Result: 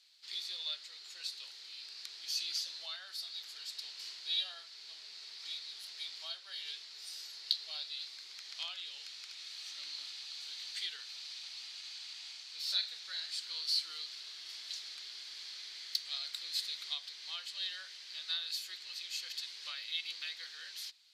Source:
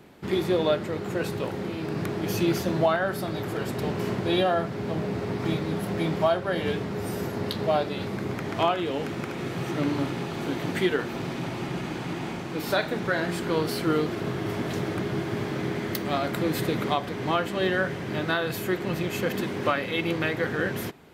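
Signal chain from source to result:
four-pole ladder band-pass 4,800 Hz, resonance 65%
level +8 dB

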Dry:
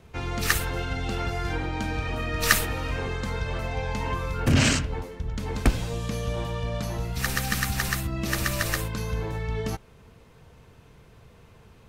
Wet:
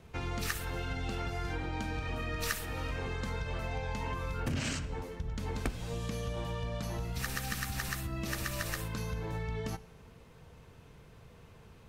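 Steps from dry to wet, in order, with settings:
downward compressor 4 to 1, threshold −30 dBFS, peak gain reduction 14 dB
convolution reverb RT60 1.0 s, pre-delay 3 ms, DRR 15.5 dB
level −3 dB

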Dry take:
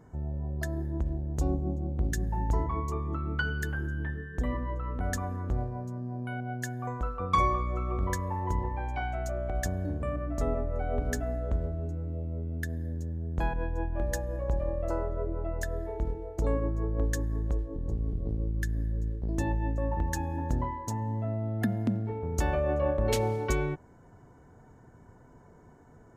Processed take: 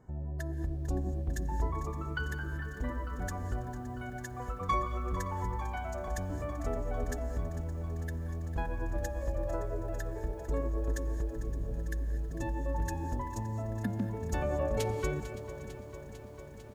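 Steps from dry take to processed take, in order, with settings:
reverb whose tail is shaped and stops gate 400 ms rising, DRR 11.5 dB
phase-vocoder stretch with locked phases 0.64×
on a send: single-tap delay 567 ms −17.5 dB
on the sum: feedback echo at a low word length 449 ms, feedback 80%, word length 9 bits, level −14 dB
level −4 dB

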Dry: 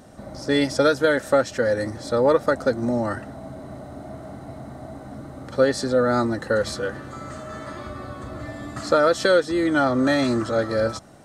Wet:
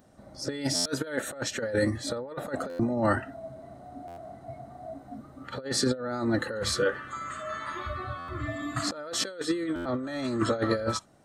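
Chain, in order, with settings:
noise reduction from a noise print of the clip's start 15 dB
compressor whose output falls as the input rises −25 dBFS, ratio −0.5
buffer that repeats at 0:00.75/0:02.69/0:04.07/0:08.18/0:09.75, samples 512, times 8
level −2.5 dB

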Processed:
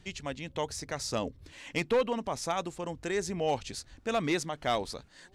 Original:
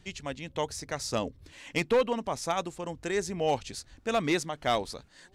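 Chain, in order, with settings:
high-shelf EQ 11,000 Hz −4 dB
in parallel at −2 dB: brickwall limiter −27 dBFS, peak gain reduction 8.5 dB
on the sum: level −4.5 dB

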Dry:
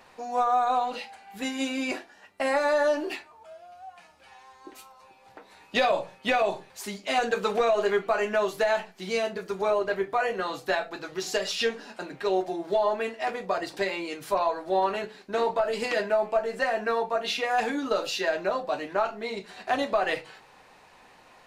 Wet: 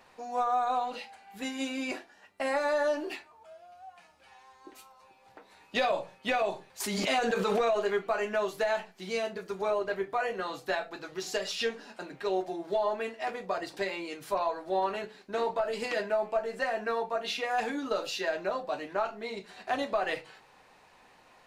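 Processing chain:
0:06.80–0:07.80: background raised ahead of every attack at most 25 dB per second
level −4.5 dB

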